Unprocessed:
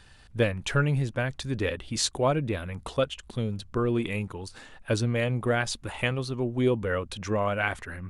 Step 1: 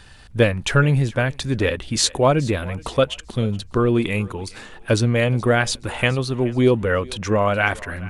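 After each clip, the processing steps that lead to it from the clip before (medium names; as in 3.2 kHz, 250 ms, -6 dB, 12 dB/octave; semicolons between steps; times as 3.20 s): thinning echo 424 ms, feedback 33%, high-pass 420 Hz, level -20 dB; trim +8 dB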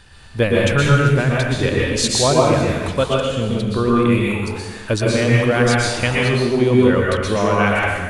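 plate-style reverb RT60 1.1 s, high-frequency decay 0.9×, pre-delay 105 ms, DRR -4 dB; trim -1.5 dB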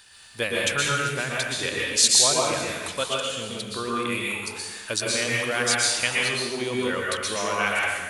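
tilt EQ +4 dB/octave; trim -7.5 dB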